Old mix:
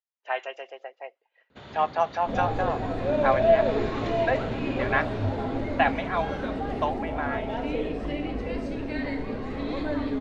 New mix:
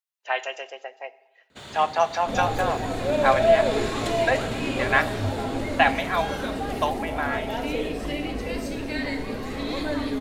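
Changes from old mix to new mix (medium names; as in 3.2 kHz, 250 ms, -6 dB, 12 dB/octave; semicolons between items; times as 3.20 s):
speech: send on; first sound: remove steep low-pass 7.1 kHz 96 dB/octave; master: remove tape spacing loss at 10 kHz 24 dB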